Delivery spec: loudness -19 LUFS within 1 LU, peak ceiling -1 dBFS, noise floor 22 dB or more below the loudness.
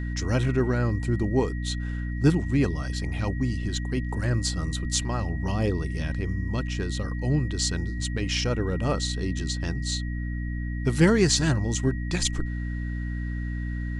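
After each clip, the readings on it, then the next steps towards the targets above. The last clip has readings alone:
hum 60 Hz; highest harmonic 300 Hz; hum level -28 dBFS; steady tone 1.9 kHz; tone level -42 dBFS; loudness -27.0 LUFS; peak level -7.5 dBFS; loudness target -19.0 LUFS
-> de-hum 60 Hz, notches 5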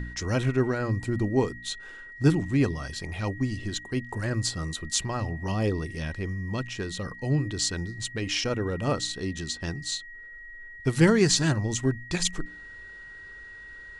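hum not found; steady tone 1.9 kHz; tone level -42 dBFS
-> band-stop 1.9 kHz, Q 30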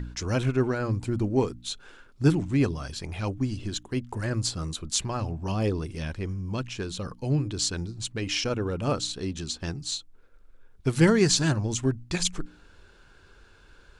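steady tone not found; loudness -28.0 LUFS; peak level -7.5 dBFS; loudness target -19.0 LUFS
-> trim +9 dB; peak limiter -1 dBFS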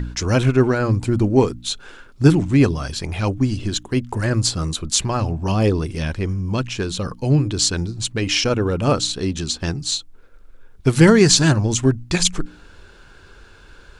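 loudness -19.0 LUFS; peak level -1.0 dBFS; noise floor -46 dBFS

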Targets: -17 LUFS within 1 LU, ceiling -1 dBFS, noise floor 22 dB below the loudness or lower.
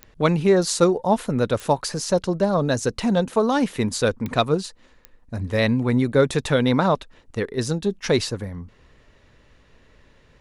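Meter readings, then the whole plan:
clicks found 4; loudness -22.0 LUFS; peak level -4.0 dBFS; loudness target -17.0 LUFS
-> de-click; trim +5 dB; peak limiter -1 dBFS

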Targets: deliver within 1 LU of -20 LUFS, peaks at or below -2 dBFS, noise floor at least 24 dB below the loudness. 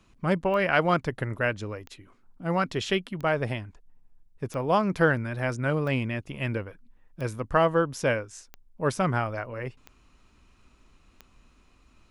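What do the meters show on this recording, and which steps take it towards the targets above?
clicks found 9; loudness -27.5 LUFS; peak level -8.0 dBFS; loudness target -20.0 LUFS
-> de-click; trim +7.5 dB; peak limiter -2 dBFS

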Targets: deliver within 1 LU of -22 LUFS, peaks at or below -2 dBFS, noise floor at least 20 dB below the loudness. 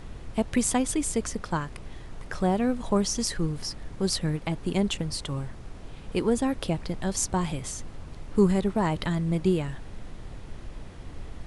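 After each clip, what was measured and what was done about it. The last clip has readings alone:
noise floor -43 dBFS; noise floor target -48 dBFS; loudness -28.0 LUFS; peak level -10.0 dBFS; loudness target -22.0 LUFS
-> noise print and reduce 6 dB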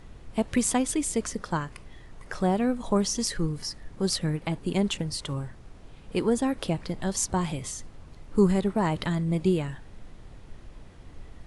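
noise floor -48 dBFS; loudness -28.0 LUFS; peak level -10.0 dBFS; loudness target -22.0 LUFS
-> trim +6 dB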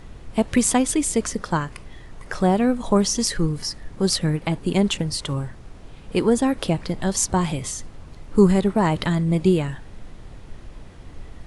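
loudness -22.0 LUFS; peak level -4.0 dBFS; noise floor -42 dBFS

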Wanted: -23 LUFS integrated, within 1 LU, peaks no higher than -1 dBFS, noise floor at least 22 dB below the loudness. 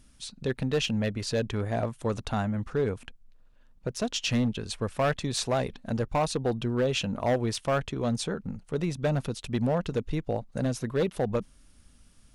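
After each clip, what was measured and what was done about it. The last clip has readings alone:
clipped samples 1.7%; clipping level -20.0 dBFS; loudness -29.5 LUFS; peak level -20.0 dBFS; loudness target -23.0 LUFS
-> clip repair -20 dBFS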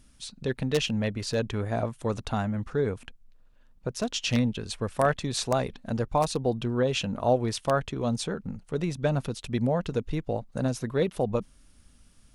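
clipped samples 0.0%; loudness -29.0 LUFS; peak level -11.0 dBFS; loudness target -23.0 LUFS
-> trim +6 dB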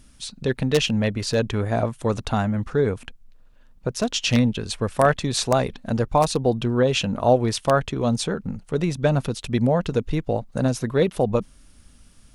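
loudness -23.0 LUFS; peak level -5.0 dBFS; noise floor -52 dBFS

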